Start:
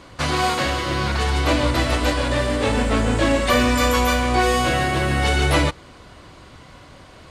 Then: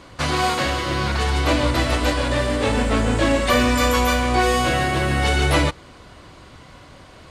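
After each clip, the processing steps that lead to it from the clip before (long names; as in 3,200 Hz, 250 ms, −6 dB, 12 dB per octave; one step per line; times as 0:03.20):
no processing that can be heard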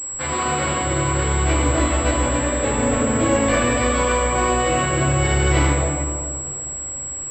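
convolution reverb RT60 2.3 s, pre-delay 4 ms, DRR −7 dB
switching amplifier with a slow clock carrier 7,700 Hz
level −8 dB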